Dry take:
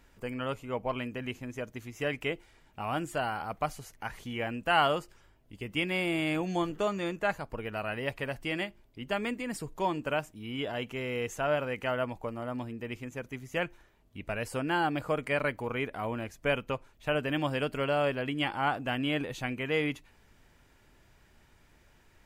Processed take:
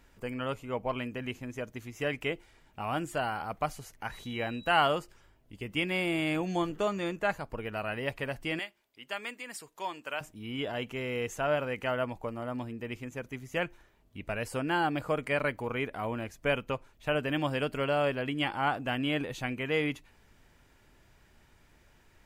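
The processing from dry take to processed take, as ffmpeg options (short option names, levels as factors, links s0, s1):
-filter_complex "[0:a]asettb=1/sr,asplit=3[s0][s1][s2];[s0]atrim=end=4.124[s3];[s1]atrim=start=4.12:end=4.69,asetpts=PTS-STARTPTS,afade=t=in:d=0.004:c=qsin,afade=t=out:st=0.566:d=0.004:c=qsin,aeval=exprs='val(0)+0.00282*sin(2*PI*3900*n/s)':c=same[s4];[s2]atrim=start=4.686[s5];[s3][s4]acrossfade=d=0.004:c1=hsin:c2=qsin[s6];[s6][s5]acrossfade=d=0.004:c1=qsin:c2=hsin,asettb=1/sr,asplit=3[s7][s8][s9];[s7]atrim=end=8.594[s10];[s8]atrim=start=8.59:end=10.21,asetpts=PTS-STARTPTS,afade=t=in:d=0.004:c=qsin,afade=t=out:st=1.616:d=0.004:c=qsin,highpass=f=1400:p=1[s11];[s9]atrim=start=10.206[s12];[s10][s11]acrossfade=d=0.004:c1=hsin:c2=qsin[s13];[s13][s12]acrossfade=d=0.004:c1=qsin:c2=hsin"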